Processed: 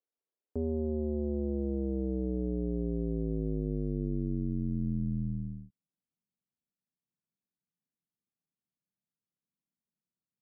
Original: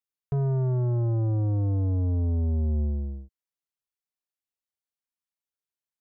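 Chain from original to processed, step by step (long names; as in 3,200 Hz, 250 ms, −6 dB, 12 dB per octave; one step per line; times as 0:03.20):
band-pass filter sweep 760 Hz → 320 Hz, 0:02.21–0:03.05
wrong playback speed 78 rpm record played at 45 rpm
low-shelf EQ 210 Hz +9 dB
speech leveller 0.5 s
low-shelf EQ 98 Hz −8 dB
level +9 dB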